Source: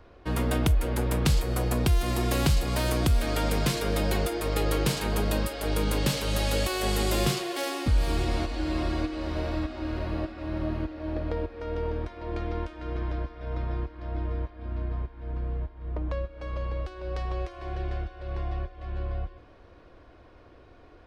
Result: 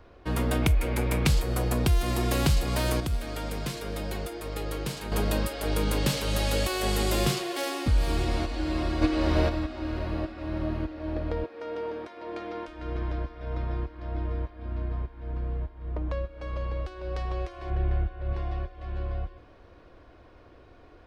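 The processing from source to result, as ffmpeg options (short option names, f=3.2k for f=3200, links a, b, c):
-filter_complex "[0:a]asettb=1/sr,asplit=3[a][b][c];[a]atrim=end=0.624[d];[b]atrim=start=0.62:end=1.28,asetpts=PTS-STARTPTS,afade=t=in:d=0.004:c=qsin,afade=t=out:st=0.656:d=0.004:c=qsin,equalizer=f=2.3k:w=5.3:g=10[e];[c]atrim=start=1.276[f];[d][e]acrossfade=d=0.004:c1=hsin:c2=qsin[g];[g][f]acrossfade=d=0.004:c1=qsin:c2=hsin,asettb=1/sr,asplit=3[h][i][j];[h]atrim=end=3.004[k];[i]atrim=start=3:end=5.12,asetpts=PTS-STARTPTS,afade=t=in:d=0.004:c=qsin,afade=t=out:st=2.116:d=0.004:c=qsin,agate=range=-7dB:threshold=-20dB:ratio=16:release=100:detection=peak[l];[j]atrim=start=5.116[m];[k][l]acrossfade=d=0.004:c1=hsin:c2=qsin[n];[n][m]acrossfade=d=0.004:c1=qsin:c2=hsin,asplit=3[o][p][q];[o]afade=t=out:st=9.01:d=0.02[r];[p]acontrast=89,afade=t=in:st=9.01:d=0.02,afade=t=out:st=9.48:d=0.02[s];[q]afade=t=in:st=9.48:d=0.02[t];[r][s][t]amix=inputs=3:normalize=0,asettb=1/sr,asplit=3[u][v][w];[u]atrim=end=11.444[x];[v]atrim=start=11.44:end=12.68,asetpts=PTS-STARTPTS,afade=t=in:d=0.004:c=qsin,afade=t=out:st=1.236:d=0.004:c=qsin,highpass=290[y];[w]atrim=start=12.676[z];[x][y]acrossfade=d=0.004:c1=hsin:c2=qsin[aa];[aa][z]acrossfade=d=0.004:c1=qsin:c2=hsin,asettb=1/sr,asplit=3[ab][ac][ad];[ab]atrim=end=17.704[ae];[ac]atrim=start=17.7:end=18.33,asetpts=PTS-STARTPTS,afade=t=in:d=0.004:c=qsin,afade=t=out:st=0.626:d=0.004:c=qsin,bass=f=250:g=6,treble=f=4k:g=-14[af];[ad]atrim=start=18.326[ag];[ae][af]acrossfade=d=0.004:c1=hsin:c2=qsin[ah];[ah][ag]acrossfade=d=0.004:c1=qsin:c2=hsin"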